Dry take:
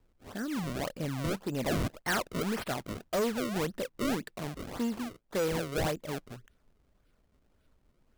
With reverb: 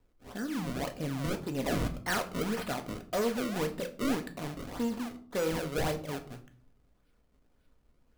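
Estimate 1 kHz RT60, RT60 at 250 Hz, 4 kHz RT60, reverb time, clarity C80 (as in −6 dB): 0.45 s, 0.75 s, 0.35 s, 0.50 s, 18.0 dB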